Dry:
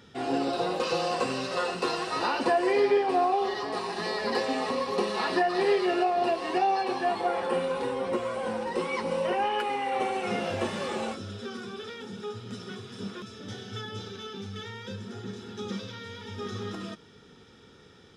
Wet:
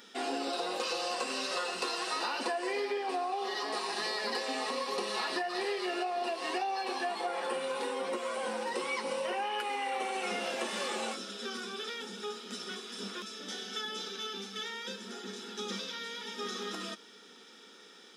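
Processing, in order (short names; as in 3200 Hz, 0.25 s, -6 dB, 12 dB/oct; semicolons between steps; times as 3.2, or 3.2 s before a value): tilt +2.5 dB/oct; compressor, threshold -31 dBFS, peak gain reduction 10 dB; brick-wall FIR high-pass 180 Hz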